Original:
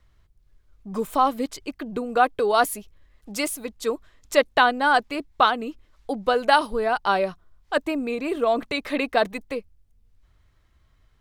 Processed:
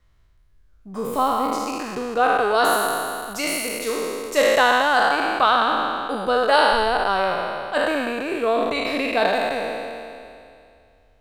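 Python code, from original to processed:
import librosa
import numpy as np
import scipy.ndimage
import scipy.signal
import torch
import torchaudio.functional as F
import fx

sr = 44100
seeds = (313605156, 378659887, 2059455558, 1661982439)

y = fx.spec_trails(x, sr, decay_s=2.38)
y = y * 10.0 ** (-3.0 / 20.0)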